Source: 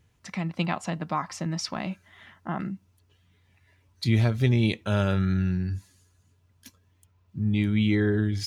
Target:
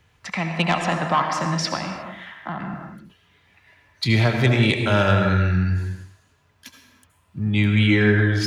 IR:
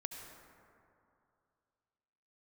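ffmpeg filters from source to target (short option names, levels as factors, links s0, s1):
-filter_complex "[0:a]acrossover=split=260|550|4300[s0][s1][s2][s3];[s2]aeval=exprs='0.168*sin(PI/2*1.78*val(0)/0.168)':c=same[s4];[s0][s1][s4][s3]amix=inputs=4:normalize=0,asettb=1/sr,asplit=3[s5][s6][s7];[s5]atrim=end=1.754[s8];[s6]atrim=start=1.75:end=2.74,asetpts=PTS-STARTPTS,afade=t=in:d=0.004:c=qsin,afade=t=out:st=0.986:d=0.004:c=qsin,acrossover=split=160[s9][s10];[s10]acompressor=threshold=0.0282:ratio=6[s11];[s9][s11]amix=inputs=2:normalize=0[s12];[s7]atrim=start=2.736[s13];[s8][s12]acrossfade=d=0.004:c1=hsin:c2=qsin[s14];[s14][s13]acrossfade=d=0.004:c1=qsin:c2=hsin[s15];[1:a]atrim=start_sample=2205,afade=t=out:st=0.42:d=0.01,atrim=end_sample=18963[s16];[s15][s16]afir=irnorm=-1:irlink=0,volume=2"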